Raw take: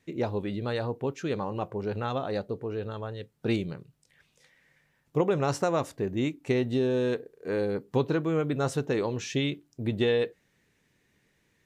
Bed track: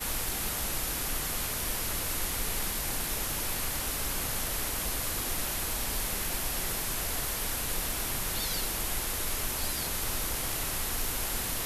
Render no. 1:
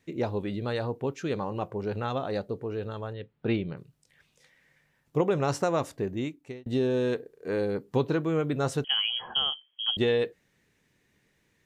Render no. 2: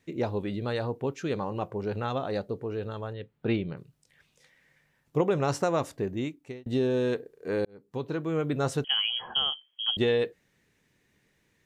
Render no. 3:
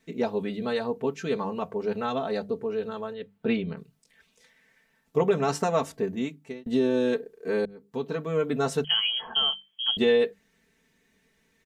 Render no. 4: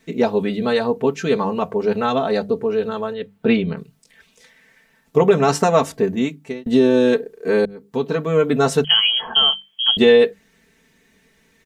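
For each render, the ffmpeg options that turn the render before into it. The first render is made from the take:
-filter_complex "[0:a]asettb=1/sr,asplit=3[s0][s1][s2];[s0]atrim=end=3.134[s3];[s1]atrim=start=3.13:end=3.77,asetpts=PTS-STARTPTS,afade=t=in:d=0.004:c=qsin,afade=t=out:st=0.636:d=0.004:c=qsin,lowpass=f=3500:w=0.5412,lowpass=f=3500:w=1.3066[s4];[s2]atrim=start=3.766[s5];[s3][s4]acrossfade=d=0.004:c1=hsin:c2=qsin[s6];[s6][s5]acrossfade=d=0.004:c1=qsin:c2=hsin,asettb=1/sr,asplit=3[s7][s8][s9];[s7]atrim=end=8.844[s10];[s8]atrim=start=8.84:end=9.97,asetpts=PTS-STARTPTS,afade=t=in:d=0.004:c=qsin,afade=t=out:st=1.126:d=0.004:c=qsin,lowpass=f=2900:t=q:w=0.5098,lowpass=f=2900:t=q:w=0.6013,lowpass=f=2900:t=q:w=0.9,lowpass=f=2900:t=q:w=2.563,afreqshift=-3400[s11];[s9]atrim=start=9.966[s12];[s10][s11]acrossfade=d=0.004:c1=hsin:c2=qsin[s13];[s13][s12]acrossfade=d=0.004:c1=qsin:c2=hsin,asplit=2[s14][s15];[s14]atrim=end=6.66,asetpts=PTS-STARTPTS,afade=t=out:st=6:d=0.66[s16];[s15]atrim=start=6.66,asetpts=PTS-STARTPTS,afade=t=in:d=0.004:c=hsin[s17];[s16][s17]concat=n=2:v=0:a=1"
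-filter_complex "[0:a]asplit=2[s0][s1];[s0]atrim=end=7.65,asetpts=PTS-STARTPTS,afade=t=out:st=7.646:d=0.004:c=hsin[s2];[s1]atrim=start=7.65,asetpts=PTS-STARTPTS,afade=t=in:d=0.86[s3];[s2][s3]concat=n=2:v=0:a=1"
-af "bandreject=f=50:t=h:w=6,bandreject=f=100:t=h:w=6,bandreject=f=150:t=h:w=6,bandreject=f=200:t=h:w=6,aecho=1:1:4.5:0.85"
-af "volume=2.99,alimiter=limit=0.708:level=0:latency=1"

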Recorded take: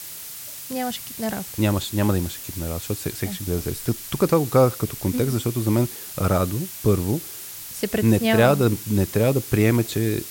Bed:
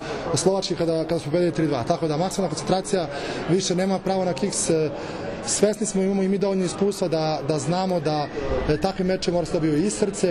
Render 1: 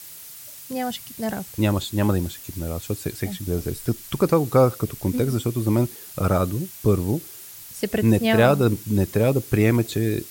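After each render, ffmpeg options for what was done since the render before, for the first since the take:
-af "afftdn=nr=6:nf=-37"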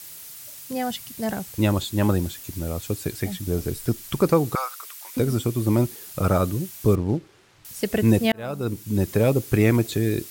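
-filter_complex "[0:a]asettb=1/sr,asplit=3[s0][s1][s2];[s0]atrim=end=4.554[s3];[s1]atrim=start=4.55:end=5.17,asetpts=PTS-STARTPTS,afade=t=in:d=0.004:c=qsin,afade=t=out:st=0.616:d=0.004:c=qsin,highpass=f=990:w=0.5412,highpass=f=990:w=1.3066[s4];[s2]atrim=start=5.166[s5];[s3][s4]acrossfade=d=0.004:c1=hsin:c2=qsin[s6];[s6][s5]acrossfade=d=0.004:c1=qsin:c2=hsin,asettb=1/sr,asplit=3[s7][s8][s9];[s7]atrim=end=6.954[s10];[s8]atrim=start=6.95:end=7.65,asetpts=PTS-STARTPTS,afade=t=in:d=0.004:c=qsin,afade=t=out:st=0.696:d=0.004:c=qsin,adynamicsmooth=sensitivity=5:basefreq=2100[s11];[s9]atrim=start=7.646[s12];[s10][s11]acrossfade=d=0.004:c1=hsin:c2=qsin[s13];[s13][s12]acrossfade=d=0.004:c1=qsin:c2=hsin,asplit=2[s14][s15];[s14]atrim=end=8.32,asetpts=PTS-STARTPTS,afade=t=out:st=8.316:d=0.004:c=hsin[s16];[s15]atrim=start=8.32,asetpts=PTS-STARTPTS,afade=t=in:d=0.81[s17];[s16][s17]concat=n=2:v=0:a=1"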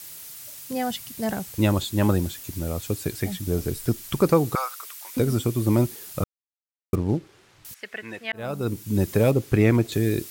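-filter_complex "[0:a]asettb=1/sr,asplit=3[s0][s1][s2];[s0]atrim=end=7.744[s3];[s1]atrim=start=7.74:end=8.33,asetpts=PTS-STARTPTS,afade=t=in:d=0.004:c=qsin,afade=t=out:st=0.586:d=0.004:c=qsin,bandpass=f=1800:t=q:w=1.8[s4];[s2]atrim=start=8.326[s5];[s3][s4]acrossfade=d=0.004:c1=hsin:c2=qsin[s6];[s6][s5]acrossfade=d=0.004:c1=qsin:c2=hsin,asettb=1/sr,asplit=3[s7][s8][s9];[s7]atrim=end=9.314[s10];[s8]atrim=start=9.31:end=9.92,asetpts=PTS-STARTPTS,afade=t=in:d=0.004:c=qsin,afade=t=out:st=0.606:d=0.004:c=qsin,highshelf=f=6300:g=-10.5[s11];[s9]atrim=start=9.916[s12];[s10][s11]acrossfade=d=0.004:c1=hsin:c2=qsin[s13];[s13][s12]acrossfade=d=0.004:c1=qsin:c2=hsin,asplit=3[s14][s15][s16];[s14]atrim=end=6.24,asetpts=PTS-STARTPTS,afade=t=out:st=6.236:d=0.004:c=hsin[s17];[s15]atrim=start=6.24:end=6.93,asetpts=PTS-STARTPTS,volume=0[s18];[s16]atrim=start=6.93,asetpts=PTS-STARTPTS,afade=t=in:d=0.004:c=hsin[s19];[s17][s18][s19]concat=n=3:v=0:a=1"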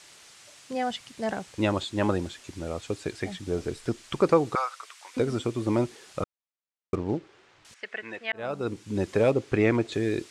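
-af "lowpass=f=8200:w=0.5412,lowpass=f=8200:w=1.3066,bass=f=250:g=-10,treble=f=4000:g=-7"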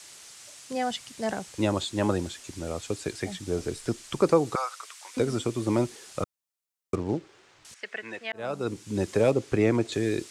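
-filter_complex "[0:a]acrossover=split=180|1000|5200[s0][s1][s2][s3];[s2]alimiter=level_in=1.06:limit=0.0631:level=0:latency=1:release=171,volume=0.944[s4];[s3]acontrast=86[s5];[s0][s1][s4][s5]amix=inputs=4:normalize=0"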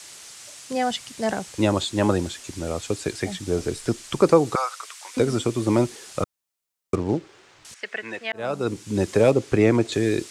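-af "volume=1.78"

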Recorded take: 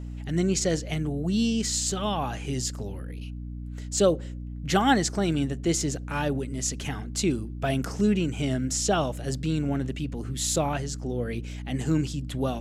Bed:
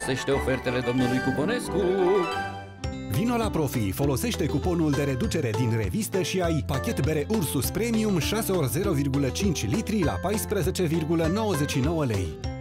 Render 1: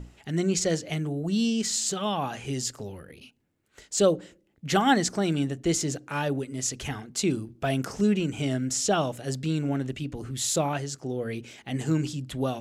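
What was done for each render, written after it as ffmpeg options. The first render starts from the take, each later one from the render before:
-af "bandreject=f=60:t=h:w=6,bandreject=f=120:t=h:w=6,bandreject=f=180:t=h:w=6,bandreject=f=240:t=h:w=6,bandreject=f=300:t=h:w=6"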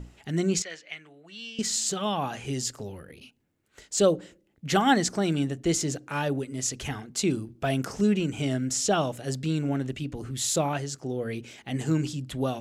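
-filter_complex "[0:a]asettb=1/sr,asplit=3[s0][s1][s2];[s0]atrim=end=0.624[s3];[s1]atrim=start=0.62:end=1.59,asetpts=PTS-STARTPTS,afade=t=in:d=0.004:c=qsin,afade=t=out:st=0.966:d=0.004:c=qsin,bandpass=f=2200:t=q:w=1.8[s4];[s2]atrim=start=1.586[s5];[s3][s4]acrossfade=d=0.004:c1=hsin:c2=qsin[s6];[s6][s5]acrossfade=d=0.004:c1=qsin:c2=hsin"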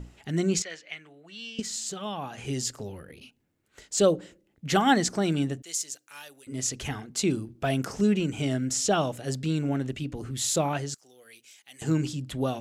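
-filter_complex "[0:a]asettb=1/sr,asplit=3[s0][s1][s2];[s0]atrim=end=5.624[s3];[s1]atrim=start=5.62:end=6.47,asetpts=PTS-STARTPTS,afade=t=in:d=0.004:c=qsin,afade=t=out:st=0.846:d=0.004:c=qsin,aderivative[s4];[s2]atrim=start=6.466[s5];[s3][s4]acrossfade=d=0.004:c1=hsin:c2=qsin[s6];[s6][s5]acrossfade=d=0.004:c1=qsin:c2=hsin,asettb=1/sr,asplit=3[s7][s8][s9];[s7]atrim=end=10.944[s10];[s8]atrim=start=10.94:end=11.82,asetpts=PTS-STARTPTS,afade=t=in:d=0.004:c=qsin,afade=t=out:st=0.876:d=0.004:c=qsin,aderivative[s11];[s9]atrim=start=11.816[s12];[s10][s11]acrossfade=d=0.004:c1=hsin:c2=qsin[s13];[s13][s12]acrossfade=d=0.004:c1=qsin:c2=hsin,asplit=3[s14][s15][s16];[s14]atrim=end=1.602[s17];[s15]atrim=start=1.598:end=2.382,asetpts=PTS-STARTPTS,volume=0.501[s18];[s16]atrim=start=2.378[s19];[s17][s18]acrossfade=d=0.004:c1=hsin:c2=hsin[s20];[s20][s19]acrossfade=d=0.004:c1=hsin:c2=hsin"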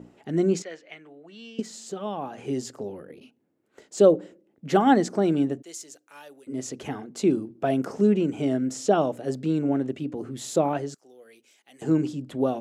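-af "highpass=290,tiltshelf=f=1100:g=9.5"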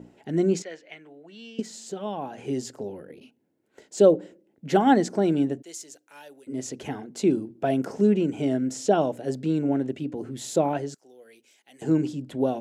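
-af "bandreject=f=1200:w=6.4"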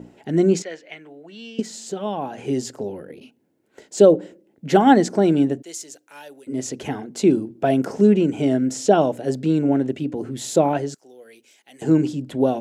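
-af "volume=1.88,alimiter=limit=0.708:level=0:latency=1"

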